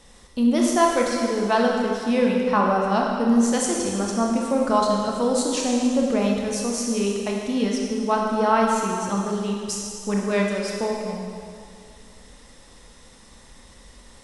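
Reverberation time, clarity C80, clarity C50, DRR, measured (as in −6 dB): 2.3 s, 2.0 dB, 0.5 dB, −1.0 dB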